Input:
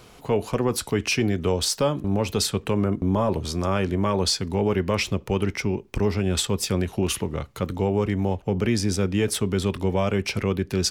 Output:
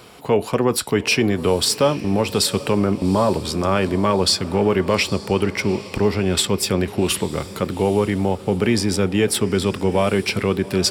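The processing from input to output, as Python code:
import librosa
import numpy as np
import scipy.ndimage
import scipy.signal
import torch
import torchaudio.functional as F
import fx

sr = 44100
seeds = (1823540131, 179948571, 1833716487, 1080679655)

y = fx.highpass(x, sr, hz=160.0, slope=6)
y = fx.notch(y, sr, hz=6300.0, q=6.1)
y = fx.echo_diffused(y, sr, ms=814, feedback_pct=44, wet_db=-16)
y = y * librosa.db_to_amplitude(6.0)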